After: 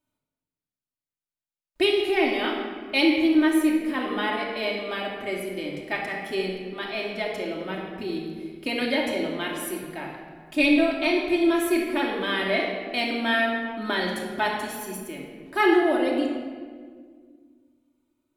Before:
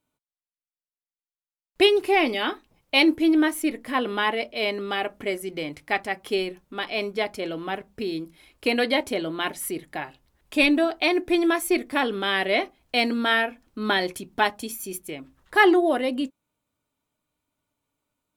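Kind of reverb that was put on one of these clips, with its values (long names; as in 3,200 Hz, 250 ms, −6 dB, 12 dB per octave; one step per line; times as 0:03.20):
rectangular room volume 2,400 cubic metres, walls mixed, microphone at 2.7 metres
level −6 dB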